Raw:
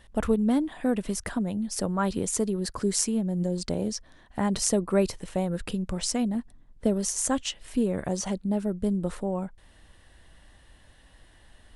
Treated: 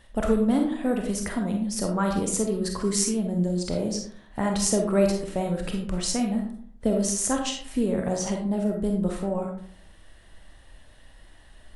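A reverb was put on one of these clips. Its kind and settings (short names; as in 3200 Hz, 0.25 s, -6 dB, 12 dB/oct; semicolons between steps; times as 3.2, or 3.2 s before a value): digital reverb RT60 0.6 s, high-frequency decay 0.5×, pre-delay 5 ms, DRR 1.5 dB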